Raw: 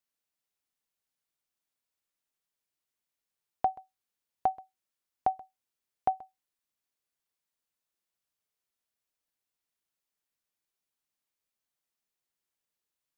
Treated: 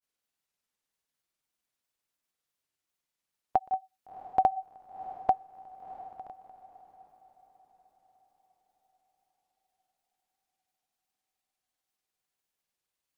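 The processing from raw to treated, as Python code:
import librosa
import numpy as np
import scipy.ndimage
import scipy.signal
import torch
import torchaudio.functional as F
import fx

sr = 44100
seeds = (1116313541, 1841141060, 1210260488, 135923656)

y = fx.granulator(x, sr, seeds[0], grain_ms=100.0, per_s=20.0, spray_ms=100.0, spread_st=0)
y = fx.echo_diffused(y, sr, ms=692, feedback_pct=44, wet_db=-15.0)
y = y * librosa.db_to_amplitude(3.5)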